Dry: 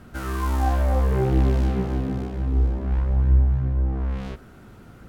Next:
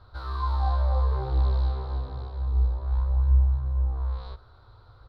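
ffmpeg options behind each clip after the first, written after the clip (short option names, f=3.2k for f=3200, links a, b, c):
-af "firequalizer=gain_entry='entry(110,0);entry(160,-27);entry(490,-5);entry(690,-6);entry(1000,3);entry(1900,-14);entry(2800,-16);entry(4000,8);entry(6400,-26)':delay=0.05:min_phase=1,volume=-2.5dB"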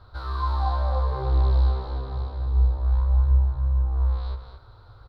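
-af "aecho=1:1:220:0.398,volume=2.5dB"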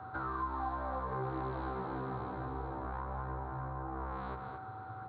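-filter_complex "[0:a]highpass=f=120:w=0.5412,highpass=f=120:w=1.3066,equalizer=f=180:t=q:w=4:g=8,equalizer=f=300:t=q:w=4:g=8,equalizer=f=540:t=q:w=4:g=-5,equalizer=f=1.4k:t=q:w=4:g=3,lowpass=f=2.3k:w=0.5412,lowpass=f=2.3k:w=1.3066,aeval=exprs='val(0)+0.00282*sin(2*PI*760*n/s)':c=same,acrossover=split=300|1400[a][b][c];[a]acompressor=threshold=-48dB:ratio=4[d];[b]acompressor=threshold=-46dB:ratio=4[e];[c]acompressor=threshold=-54dB:ratio=4[f];[d][e][f]amix=inputs=3:normalize=0,volume=5.5dB"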